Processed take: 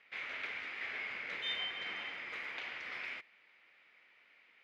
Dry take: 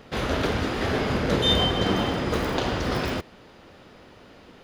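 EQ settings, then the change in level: band-pass filter 2.2 kHz, Q 6.1; -1.0 dB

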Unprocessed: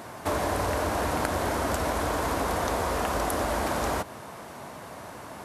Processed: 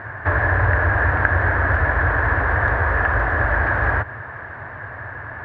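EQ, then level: resonant low-pass 1.7 kHz, resonance Q 11; distance through air 130 m; resonant low shelf 140 Hz +8.5 dB, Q 3; +2.5 dB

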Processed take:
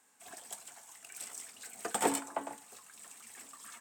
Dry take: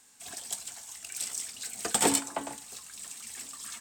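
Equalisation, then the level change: high-pass 510 Hz 6 dB/octave; treble shelf 2.1 kHz -8 dB; peaking EQ 4.5 kHz -7.5 dB 1.5 oct; +1.0 dB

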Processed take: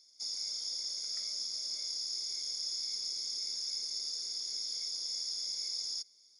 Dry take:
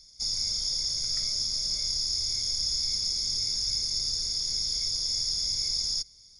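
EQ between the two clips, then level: high-pass 270 Hz 24 dB/octave; -8.5 dB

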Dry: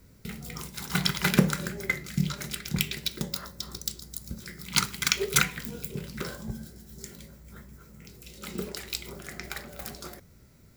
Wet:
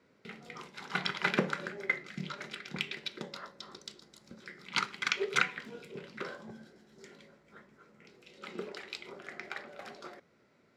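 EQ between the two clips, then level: band-pass 340–2900 Hz; -1.5 dB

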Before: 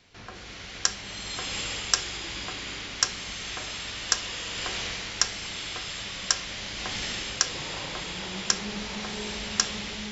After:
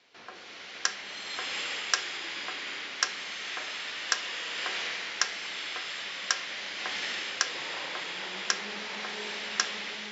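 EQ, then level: dynamic bell 1.8 kHz, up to +5 dB, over -44 dBFS, Q 1.5; band-pass 350–5400 Hz; -2.0 dB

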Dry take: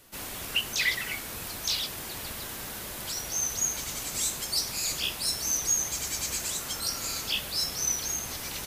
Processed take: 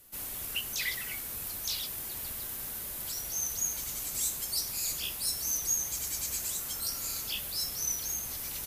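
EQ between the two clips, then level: bass shelf 96 Hz +6.5 dB; peaking EQ 13 kHz +12.5 dB 1.1 oct; -8.5 dB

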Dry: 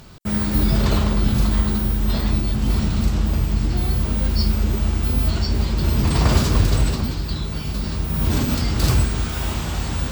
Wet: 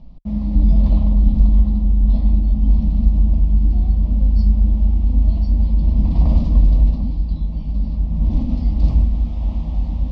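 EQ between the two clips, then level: low-pass 5.3 kHz 24 dB/octave; tilt EQ -4.5 dB/octave; static phaser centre 400 Hz, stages 6; -9.5 dB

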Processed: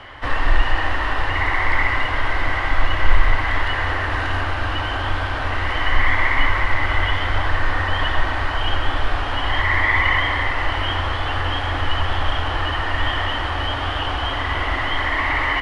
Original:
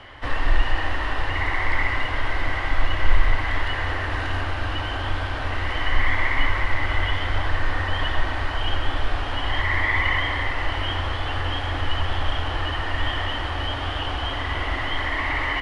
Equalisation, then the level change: peaking EQ 1.2 kHz +3.5 dB 1.6 oct; +2.5 dB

